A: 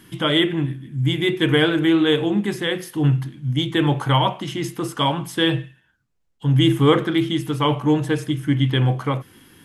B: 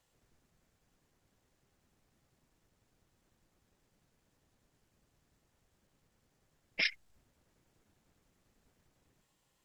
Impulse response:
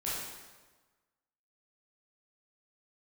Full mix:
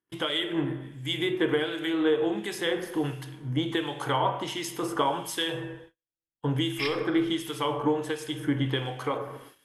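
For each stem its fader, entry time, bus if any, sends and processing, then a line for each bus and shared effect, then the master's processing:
-10.5 dB, 0.00 s, send -11.5 dB, FFT filter 200 Hz 0 dB, 430 Hz +14 dB, 2.3 kHz +10 dB; compression 10:1, threshold -11 dBFS, peak gain reduction 14 dB
0.0 dB, 0.00 s, send -6.5 dB, tone controls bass +9 dB, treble -3 dB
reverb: on, RT60 1.3 s, pre-delay 13 ms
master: gate -45 dBFS, range -38 dB; harmonic tremolo 1.4 Hz, depth 70%, crossover 2 kHz

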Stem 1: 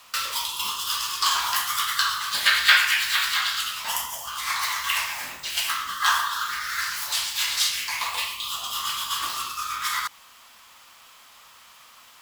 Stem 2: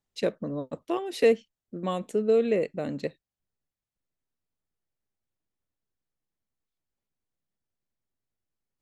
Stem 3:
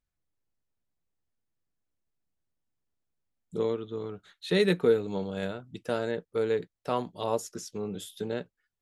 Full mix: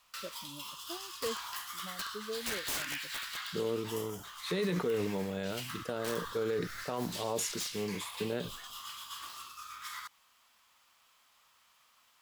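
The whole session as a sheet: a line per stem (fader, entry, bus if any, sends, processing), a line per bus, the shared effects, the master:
-16.5 dB, 0.00 s, no send, integer overflow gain 13 dB
-14.5 dB, 0.00 s, no send, expander on every frequency bin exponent 2
-2.0 dB, 0.00 s, no send, decay stretcher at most 81 dB/s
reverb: none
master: peak limiter -24 dBFS, peak gain reduction 10 dB

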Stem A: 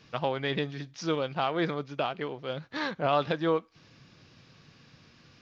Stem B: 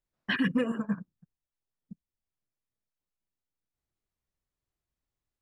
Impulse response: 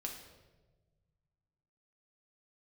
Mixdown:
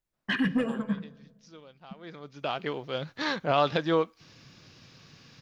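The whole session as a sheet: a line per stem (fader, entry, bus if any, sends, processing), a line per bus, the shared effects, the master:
+1.5 dB, 0.45 s, no send, treble shelf 6.1 kHz +11 dB; auto duck -23 dB, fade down 0.90 s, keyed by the second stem
-1.0 dB, 0.00 s, send -7 dB, saturation -18 dBFS, distortion -23 dB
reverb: on, RT60 1.3 s, pre-delay 5 ms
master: none

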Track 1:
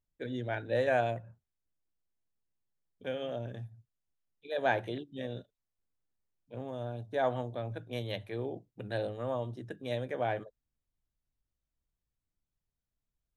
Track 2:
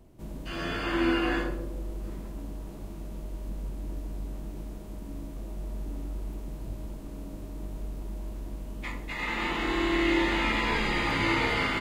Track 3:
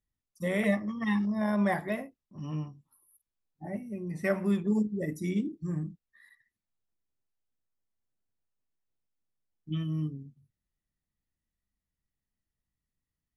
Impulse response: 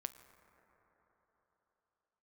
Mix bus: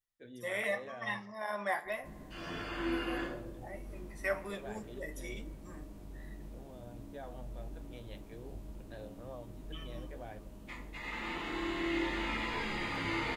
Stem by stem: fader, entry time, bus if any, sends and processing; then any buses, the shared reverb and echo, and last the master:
-9.5 dB, 0.00 s, no send, peak limiter -24 dBFS, peak gain reduction 8 dB
-5.0 dB, 1.85 s, no send, none
-0.5 dB, 0.00 s, send -3 dB, high-pass 690 Hz 12 dB/octave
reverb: on, RT60 4.2 s, pre-delay 7 ms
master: flange 0.86 Hz, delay 9.1 ms, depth 5.4 ms, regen -54%

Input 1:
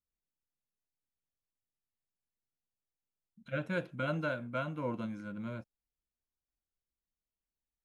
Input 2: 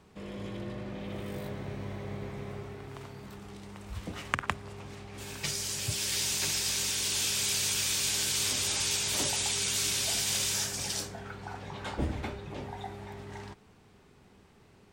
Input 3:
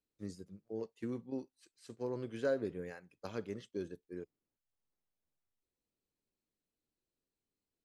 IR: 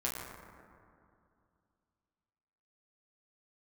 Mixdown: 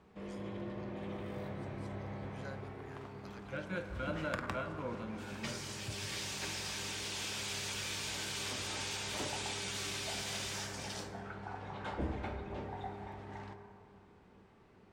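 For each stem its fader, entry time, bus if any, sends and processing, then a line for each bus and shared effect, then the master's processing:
-7.5 dB, 0.00 s, send -6.5 dB, none
-4.5 dB, 0.00 s, send -6 dB, low-pass 1.7 kHz 6 dB/octave; saturation -25 dBFS, distortion -17 dB
-5.5 dB, 0.00 s, no send, high-pass 1 kHz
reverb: on, RT60 2.4 s, pre-delay 7 ms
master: bass shelf 210 Hz -6 dB

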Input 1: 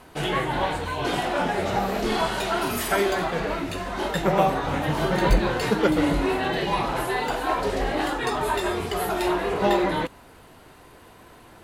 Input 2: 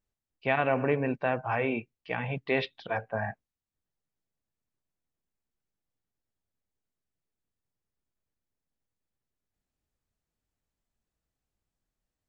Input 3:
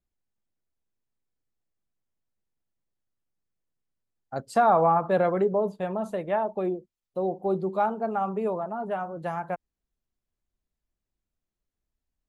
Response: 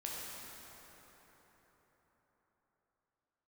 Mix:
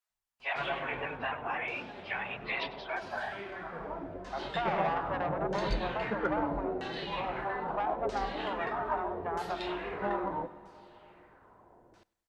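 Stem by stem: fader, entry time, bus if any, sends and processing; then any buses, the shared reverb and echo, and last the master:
-14.0 dB, 0.40 s, no bus, send -15.5 dB, echo send -22 dB, LFO low-pass saw down 0.78 Hz 500–6300 Hz; Chebyshev shaper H 7 -37 dB, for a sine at -5 dBFS; auto duck -11 dB, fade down 1.75 s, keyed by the second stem
+1.0 dB, 0.00 s, bus A, no send, echo send -20 dB, phase randomisation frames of 50 ms; vibrato with a chosen wave saw up 3.8 Hz, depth 100 cents
+3.0 dB, 0.00 s, bus A, no send, echo send -20.5 dB, low-pass 1.2 kHz 12 dB/octave; bass shelf 200 Hz +7.5 dB; valve stage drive 19 dB, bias 0.55
bus A: 0.0 dB, high-pass 770 Hz 24 dB/octave; compression, threshold -31 dBFS, peak gain reduction 10 dB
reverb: on, RT60 4.7 s, pre-delay 7 ms
echo: feedback delay 100 ms, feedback 46%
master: none

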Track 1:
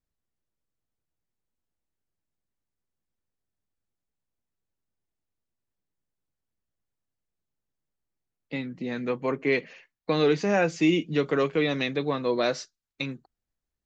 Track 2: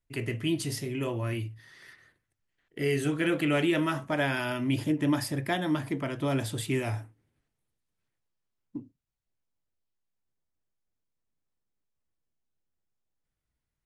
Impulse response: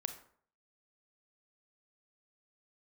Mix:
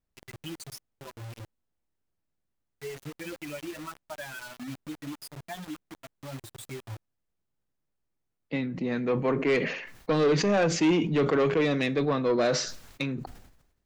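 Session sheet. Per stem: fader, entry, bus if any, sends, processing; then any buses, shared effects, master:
+1.0 dB, 0.00 s, send -8.5 dB, treble shelf 2.9 kHz -7 dB; saturation -21.5 dBFS, distortion -12 dB; decay stretcher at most 66 dB/s
-1.5 dB, 0.00 s, no send, expander on every frequency bin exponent 3; compression, threshold -34 dBFS, peak gain reduction 9.5 dB; bit crusher 7-bit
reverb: on, RT60 0.55 s, pre-delay 27 ms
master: none

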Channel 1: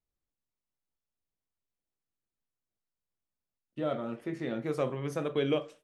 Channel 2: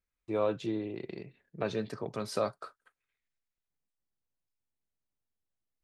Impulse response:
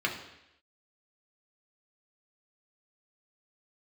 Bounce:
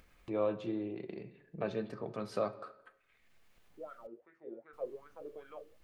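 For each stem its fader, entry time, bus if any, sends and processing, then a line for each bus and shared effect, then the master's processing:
-5.5 dB, 0.00 s, no send, wah-wah 2.6 Hz 350–1500 Hz, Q 6.8
-5.0 dB, 0.00 s, muted 4.07–4.73 s, send -14 dB, treble shelf 3.4 kHz -11 dB; upward compressor, threshold -35 dBFS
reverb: on, RT60 0.85 s, pre-delay 3 ms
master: peaking EQ 450 Hz +2.5 dB 0.77 oct

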